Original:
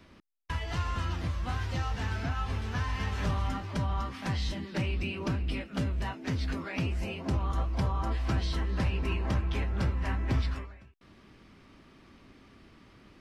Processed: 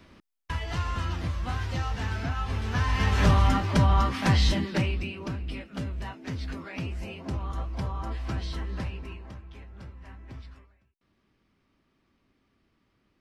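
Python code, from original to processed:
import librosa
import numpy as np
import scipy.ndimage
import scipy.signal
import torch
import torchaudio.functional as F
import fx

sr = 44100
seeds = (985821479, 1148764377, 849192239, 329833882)

y = fx.gain(x, sr, db=fx.line((2.46, 2.0), (3.23, 10.0), (4.58, 10.0), (5.16, -2.5), (8.75, -2.5), (9.38, -15.0)))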